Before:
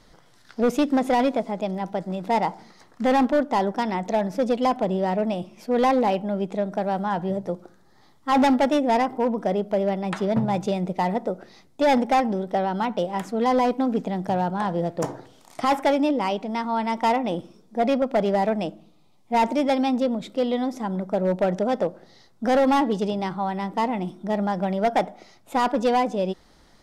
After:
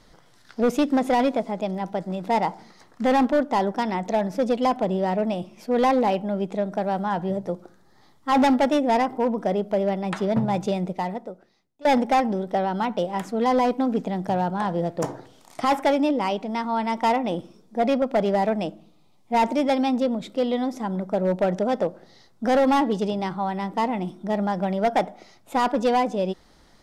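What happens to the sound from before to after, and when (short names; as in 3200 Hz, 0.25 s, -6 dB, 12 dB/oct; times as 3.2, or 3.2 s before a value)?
10.8–11.85 fade out quadratic, to -22.5 dB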